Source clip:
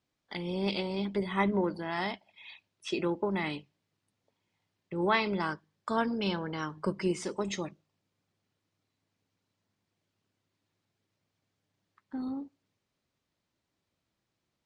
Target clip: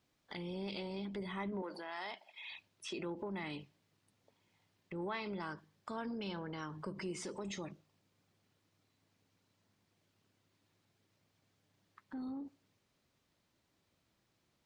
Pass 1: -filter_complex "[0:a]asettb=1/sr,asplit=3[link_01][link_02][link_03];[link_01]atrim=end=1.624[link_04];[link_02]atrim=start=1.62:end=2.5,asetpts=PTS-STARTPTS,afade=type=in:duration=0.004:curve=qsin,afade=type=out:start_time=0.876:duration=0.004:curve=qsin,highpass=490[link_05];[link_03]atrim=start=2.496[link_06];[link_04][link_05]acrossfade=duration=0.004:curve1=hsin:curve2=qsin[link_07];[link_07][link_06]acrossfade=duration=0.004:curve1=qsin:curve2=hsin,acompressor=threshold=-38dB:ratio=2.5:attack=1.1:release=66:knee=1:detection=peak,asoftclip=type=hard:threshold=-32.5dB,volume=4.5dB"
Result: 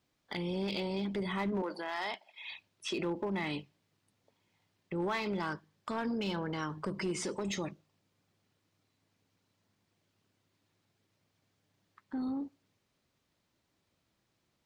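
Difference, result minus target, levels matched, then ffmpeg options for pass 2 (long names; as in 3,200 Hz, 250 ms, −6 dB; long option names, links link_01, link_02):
downward compressor: peak gain reduction −7 dB
-filter_complex "[0:a]asettb=1/sr,asplit=3[link_01][link_02][link_03];[link_01]atrim=end=1.624[link_04];[link_02]atrim=start=1.62:end=2.5,asetpts=PTS-STARTPTS,afade=type=in:duration=0.004:curve=qsin,afade=type=out:start_time=0.876:duration=0.004:curve=qsin,highpass=490[link_05];[link_03]atrim=start=2.496[link_06];[link_04][link_05]acrossfade=duration=0.004:curve1=hsin:curve2=qsin[link_07];[link_07][link_06]acrossfade=duration=0.004:curve1=qsin:curve2=hsin,acompressor=threshold=-50dB:ratio=2.5:attack=1.1:release=66:knee=1:detection=peak,asoftclip=type=hard:threshold=-32.5dB,volume=4.5dB"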